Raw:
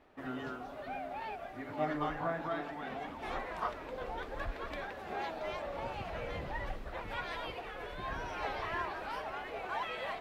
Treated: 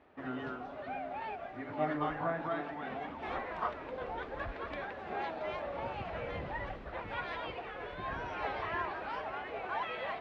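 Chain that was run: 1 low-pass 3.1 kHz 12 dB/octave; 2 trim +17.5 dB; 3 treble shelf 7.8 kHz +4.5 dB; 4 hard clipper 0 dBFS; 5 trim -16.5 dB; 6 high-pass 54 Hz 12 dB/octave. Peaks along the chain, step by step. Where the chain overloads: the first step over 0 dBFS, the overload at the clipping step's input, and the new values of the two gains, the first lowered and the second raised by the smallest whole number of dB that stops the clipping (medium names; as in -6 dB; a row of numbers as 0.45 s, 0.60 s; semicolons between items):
-21.0 dBFS, -3.5 dBFS, -3.5 dBFS, -3.5 dBFS, -20.0 dBFS, -20.5 dBFS; nothing clips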